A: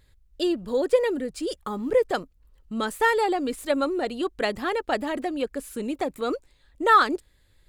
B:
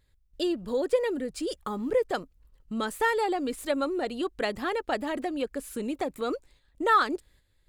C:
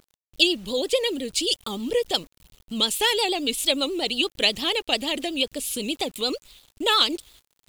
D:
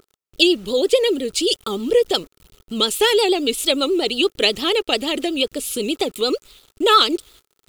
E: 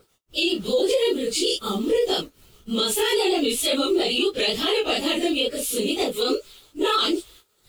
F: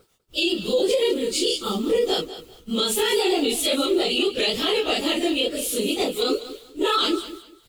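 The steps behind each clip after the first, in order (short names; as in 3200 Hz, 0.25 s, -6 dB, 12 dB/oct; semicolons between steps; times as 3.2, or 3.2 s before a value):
gate -55 dBFS, range -8 dB; in parallel at -0.5 dB: compressor, threshold -31 dBFS, peak gain reduction 17.5 dB; on the sum: gain -6 dB
resonant high shelf 2200 Hz +11.5 dB, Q 3; vibrato 8.5 Hz 95 cents; bit-crush 9-bit; gain +2 dB
small resonant body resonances 400/1300 Hz, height 9 dB, ringing for 20 ms; gain +2.5 dB
phase scrambler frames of 0.1 s; limiter -13 dBFS, peak gain reduction 10.5 dB
feedback echo 0.197 s, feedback 24%, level -14 dB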